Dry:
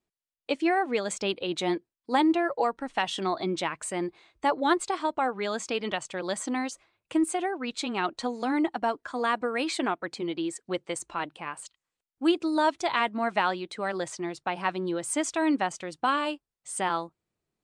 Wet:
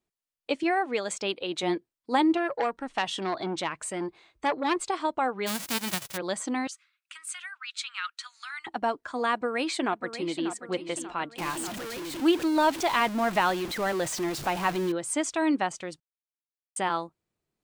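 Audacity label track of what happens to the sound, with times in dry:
0.630000	1.630000	low shelf 170 Hz -10.5 dB
2.370000	4.760000	core saturation saturates under 1400 Hz
5.460000	6.160000	spectral whitening exponent 0.1
6.670000	8.670000	elliptic high-pass 1300 Hz, stop band 60 dB
9.330000	10.500000	echo throw 0.59 s, feedback 50%, level -10.5 dB
11.380000	14.920000	zero-crossing step of -31 dBFS
16.000000	16.760000	mute

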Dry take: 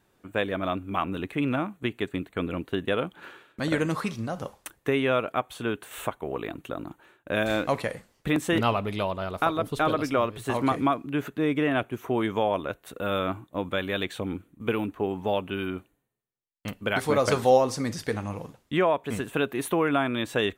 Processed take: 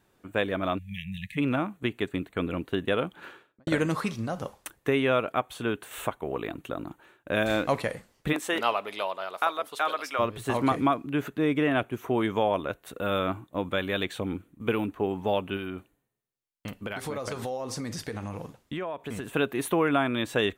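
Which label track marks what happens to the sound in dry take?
0.780000	1.370000	spectral delete 210–1700 Hz
3.260000	3.670000	studio fade out
8.320000	10.180000	HPF 430 Hz -> 890 Hz
15.560000	19.340000	compressor, threshold -30 dBFS

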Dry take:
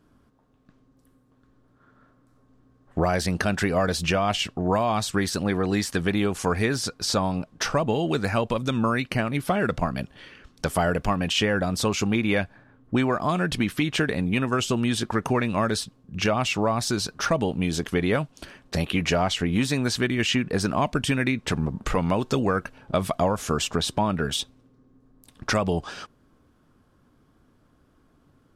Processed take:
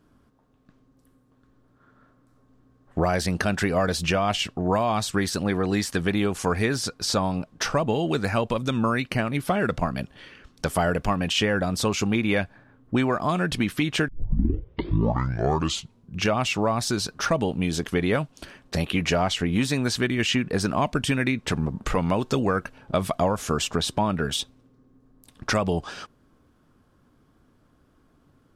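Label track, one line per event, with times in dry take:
14.080000	14.080000	tape start 2.12 s

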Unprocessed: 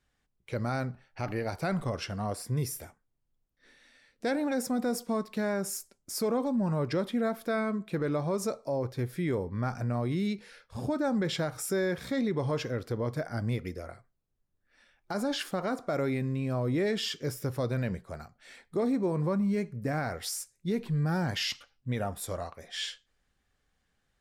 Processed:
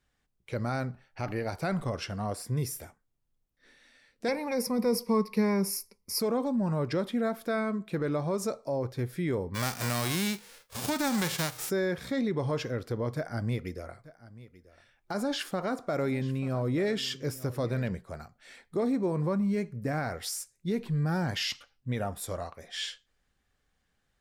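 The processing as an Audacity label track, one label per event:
4.280000	6.200000	ripple EQ crests per octave 0.86, crest to trough 14 dB
9.540000	11.690000	spectral whitening exponent 0.3
13.150000	17.880000	echo 0.887 s -18.5 dB

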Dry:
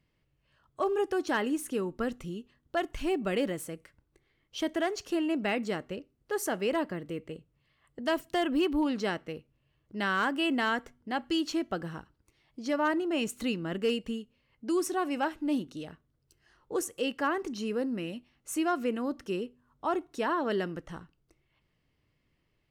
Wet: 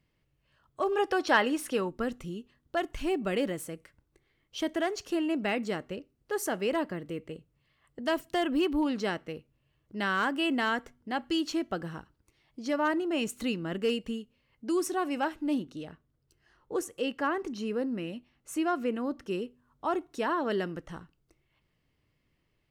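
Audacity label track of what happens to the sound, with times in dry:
0.920000	1.890000	spectral gain 460–5800 Hz +7 dB
15.540000	19.310000	high shelf 4100 Hz -5.5 dB

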